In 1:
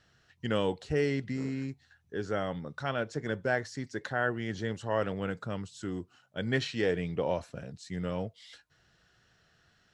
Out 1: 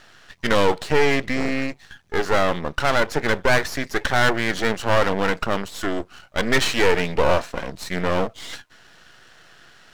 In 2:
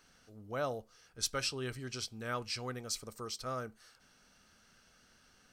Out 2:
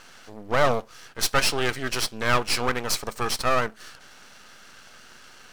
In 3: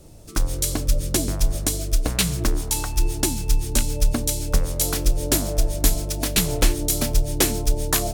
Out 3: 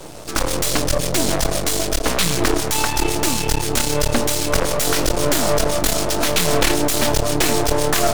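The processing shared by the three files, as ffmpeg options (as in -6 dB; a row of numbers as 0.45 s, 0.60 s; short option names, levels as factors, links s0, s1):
-filter_complex "[0:a]asplit=2[s0][s1];[s1]highpass=f=720:p=1,volume=25.1,asoftclip=type=tanh:threshold=0.631[s2];[s0][s2]amix=inputs=2:normalize=0,lowpass=f=3100:p=1,volume=0.501,aeval=exprs='max(val(0),0)':c=same,volume=1.33"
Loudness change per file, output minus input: +11.5 LU, +14.0 LU, +4.0 LU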